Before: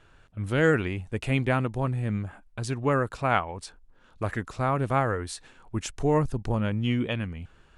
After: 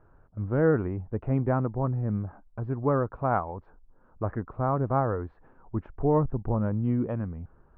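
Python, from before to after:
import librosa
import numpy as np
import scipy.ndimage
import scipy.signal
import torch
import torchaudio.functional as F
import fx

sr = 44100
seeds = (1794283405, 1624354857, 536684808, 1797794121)

y = scipy.signal.sosfilt(scipy.signal.butter(4, 1200.0, 'lowpass', fs=sr, output='sos'), x)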